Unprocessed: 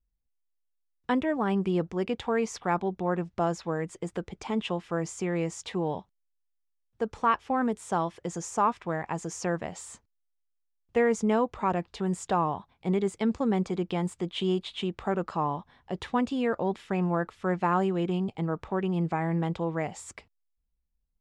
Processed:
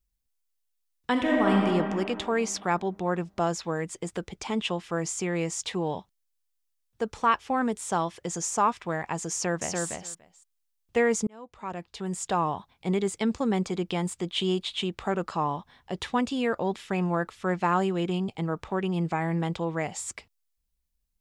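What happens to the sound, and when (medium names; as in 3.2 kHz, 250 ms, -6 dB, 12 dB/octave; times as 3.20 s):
1.11–1.54 s: reverb throw, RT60 2.4 s, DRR -2 dB
9.32–9.85 s: echo throw 290 ms, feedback 10%, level -3 dB
11.27–12.51 s: fade in
whole clip: treble shelf 2.6 kHz +9.5 dB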